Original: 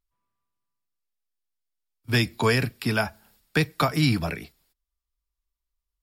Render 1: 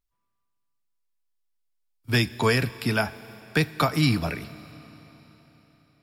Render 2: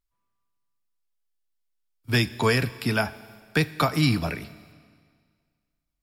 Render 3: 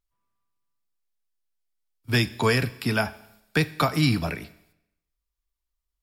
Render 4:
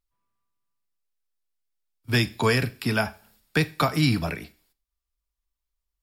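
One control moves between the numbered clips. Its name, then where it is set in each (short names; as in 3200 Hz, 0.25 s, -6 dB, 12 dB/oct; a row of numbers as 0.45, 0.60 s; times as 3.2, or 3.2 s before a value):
Schroeder reverb, RT60: 4.2, 1.9, 0.82, 0.38 s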